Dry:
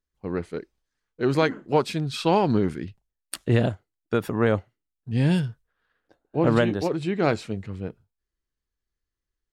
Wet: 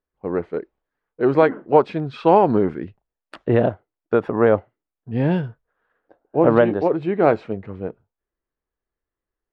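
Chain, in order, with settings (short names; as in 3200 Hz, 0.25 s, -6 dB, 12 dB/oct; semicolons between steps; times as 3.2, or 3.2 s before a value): LPF 2600 Hz 12 dB/oct; bell 630 Hz +12.5 dB 2.9 oct; gain -4 dB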